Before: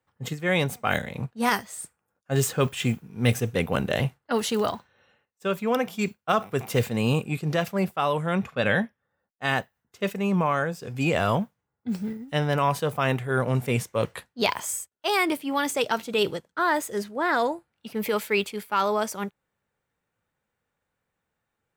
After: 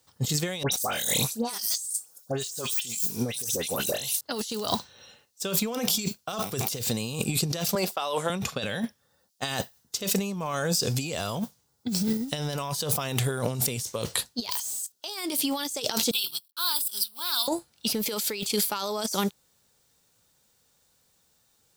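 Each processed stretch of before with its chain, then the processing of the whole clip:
0.63–4.21 tone controls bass -9 dB, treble +12 dB + dispersion highs, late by 92 ms, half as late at 2100 Hz
7.75–8.3 HPF 400 Hz + bell 12000 Hz -6.5 dB 1.9 oct + mismatched tape noise reduction decoder only
14.51–14.92 tilt +3.5 dB/oct + hard clip -23.5 dBFS
16.11–17.48 G.711 law mismatch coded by A + pre-emphasis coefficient 0.97 + fixed phaser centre 1900 Hz, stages 6
whole clip: de-esser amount 50%; resonant high shelf 3100 Hz +14 dB, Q 1.5; negative-ratio compressor -31 dBFS, ratio -1; gain +1.5 dB

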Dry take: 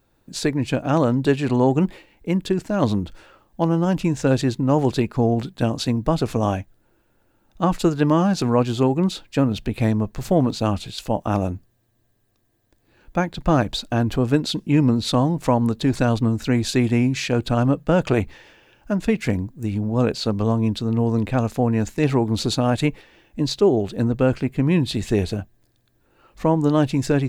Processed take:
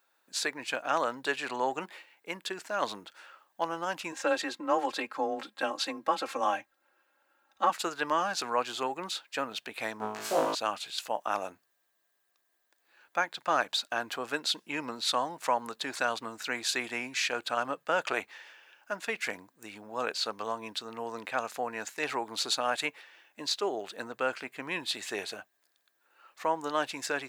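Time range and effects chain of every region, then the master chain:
4.12–7.7 high shelf 3900 Hz -7 dB + comb 3.8 ms, depth 87% + frequency shift +23 Hz
9.98–10.55 flutter echo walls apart 3.2 m, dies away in 0.79 s + Doppler distortion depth 0.34 ms
whole clip: HPF 840 Hz 12 dB/oct; bell 1500 Hz +3.5 dB 0.79 oct; gain -3 dB

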